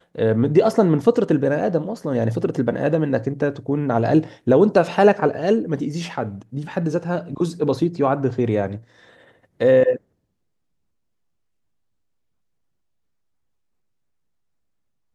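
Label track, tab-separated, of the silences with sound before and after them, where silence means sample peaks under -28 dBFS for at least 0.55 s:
8.760000	9.610000	silence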